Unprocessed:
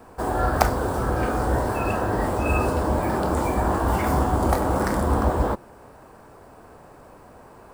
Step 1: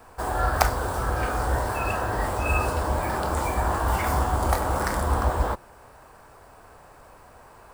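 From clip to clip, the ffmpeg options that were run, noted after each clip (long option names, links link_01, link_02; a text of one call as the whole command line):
ffmpeg -i in.wav -af "equalizer=frequency=250:width_type=o:width=2.5:gain=-11,volume=2dB" out.wav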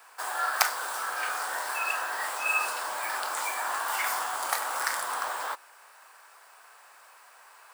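ffmpeg -i in.wav -af "highpass=1400,volume=3dB" out.wav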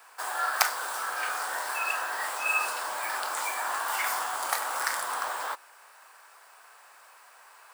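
ffmpeg -i in.wav -af anull out.wav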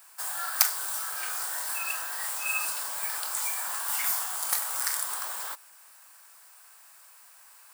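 ffmpeg -i in.wav -af "crystalizer=i=5:c=0,volume=-10.5dB" out.wav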